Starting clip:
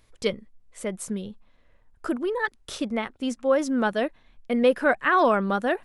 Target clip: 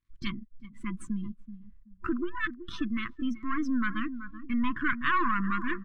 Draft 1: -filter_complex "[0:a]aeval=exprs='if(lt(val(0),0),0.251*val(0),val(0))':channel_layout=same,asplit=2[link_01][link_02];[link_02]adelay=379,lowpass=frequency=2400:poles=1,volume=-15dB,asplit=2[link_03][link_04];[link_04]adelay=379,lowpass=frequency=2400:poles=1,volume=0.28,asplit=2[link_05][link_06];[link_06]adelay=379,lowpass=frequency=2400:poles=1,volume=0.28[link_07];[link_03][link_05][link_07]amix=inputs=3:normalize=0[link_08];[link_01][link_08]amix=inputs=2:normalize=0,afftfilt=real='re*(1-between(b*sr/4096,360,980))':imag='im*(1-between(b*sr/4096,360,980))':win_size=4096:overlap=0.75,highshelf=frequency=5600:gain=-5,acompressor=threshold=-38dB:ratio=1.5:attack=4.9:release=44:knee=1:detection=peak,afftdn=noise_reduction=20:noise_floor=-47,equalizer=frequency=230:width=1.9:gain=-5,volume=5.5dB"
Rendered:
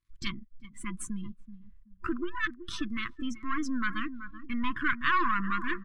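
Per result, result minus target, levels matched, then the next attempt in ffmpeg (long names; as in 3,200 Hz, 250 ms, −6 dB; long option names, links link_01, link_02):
8,000 Hz band +11.5 dB; 250 Hz band −3.0 dB
-filter_complex "[0:a]aeval=exprs='if(lt(val(0),0),0.251*val(0),val(0))':channel_layout=same,asplit=2[link_01][link_02];[link_02]adelay=379,lowpass=frequency=2400:poles=1,volume=-15dB,asplit=2[link_03][link_04];[link_04]adelay=379,lowpass=frequency=2400:poles=1,volume=0.28,asplit=2[link_05][link_06];[link_06]adelay=379,lowpass=frequency=2400:poles=1,volume=0.28[link_07];[link_03][link_05][link_07]amix=inputs=3:normalize=0[link_08];[link_01][link_08]amix=inputs=2:normalize=0,afftfilt=real='re*(1-between(b*sr/4096,360,980))':imag='im*(1-between(b*sr/4096,360,980))':win_size=4096:overlap=0.75,highshelf=frequency=5600:gain=-15,acompressor=threshold=-38dB:ratio=1.5:attack=4.9:release=44:knee=1:detection=peak,afftdn=noise_reduction=20:noise_floor=-47,equalizer=frequency=230:width=1.9:gain=-5,volume=5.5dB"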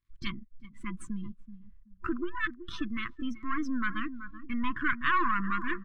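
250 Hz band −2.5 dB
-filter_complex "[0:a]aeval=exprs='if(lt(val(0),0),0.251*val(0),val(0))':channel_layout=same,asplit=2[link_01][link_02];[link_02]adelay=379,lowpass=frequency=2400:poles=1,volume=-15dB,asplit=2[link_03][link_04];[link_04]adelay=379,lowpass=frequency=2400:poles=1,volume=0.28,asplit=2[link_05][link_06];[link_06]adelay=379,lowpass=frequency=2400:poles=1,volume=0.28[link_07];[link_03][link_05][link_07]amix=inputs=3:normalize=0[link_08];[link_01][link_08]amix=inputs=2:normalize=0,afftfilt=real='re*(1-between(b*sr/4096,360,980))':imag='im*(1-between(b*sr/4096,360,980))':win_size=4096:overlap=0.75,highshelf=frequency=5600:gain=-15,acompressor=threshold=-38dB:ratio=1.5:attack=4.9:release=44:knee=1:detection=peak,afftdn=noise_reduction=20:noise_floor=-47,volume=5.5dB"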